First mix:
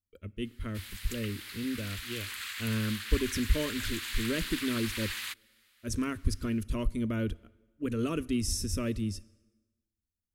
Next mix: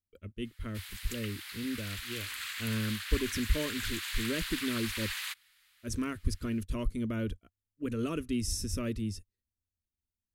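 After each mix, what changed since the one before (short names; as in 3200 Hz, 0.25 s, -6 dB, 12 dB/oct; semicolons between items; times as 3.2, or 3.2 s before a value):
reverb: off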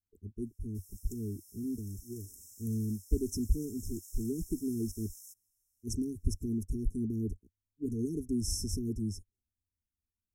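background -6.5 dB; master: add brick-wall FIR band-stop 450–5200 Hz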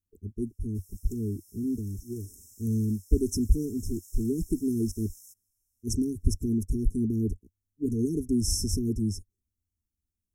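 speech +6.5 dB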